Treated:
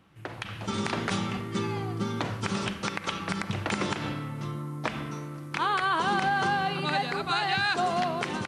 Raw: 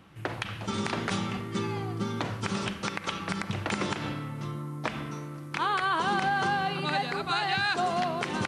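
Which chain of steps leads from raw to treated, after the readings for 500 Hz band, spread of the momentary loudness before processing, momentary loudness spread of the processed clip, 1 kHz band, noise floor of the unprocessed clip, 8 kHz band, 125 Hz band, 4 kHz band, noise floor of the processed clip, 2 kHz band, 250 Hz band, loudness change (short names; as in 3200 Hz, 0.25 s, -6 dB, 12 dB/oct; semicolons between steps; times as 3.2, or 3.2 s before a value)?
+1.0 dB, 9 LU, 10 LU, +1.0 dB, -41 dBFS, +1.0 dB, +1.0 dB, +1.0 dB, -41 dBFS, +1.0 dB, +1.0 dB, +1.0 dB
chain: AGC gain up to 7 dB; gain -6 dB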